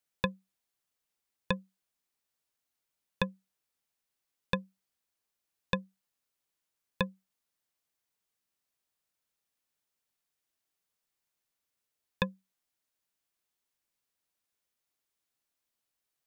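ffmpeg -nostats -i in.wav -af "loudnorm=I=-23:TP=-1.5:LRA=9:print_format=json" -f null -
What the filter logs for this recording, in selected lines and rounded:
"input_i" : "-36.6",
"input_tp" : "-12.2",
"input_lra" : "4.8",
"input_thresh" : "-47.6",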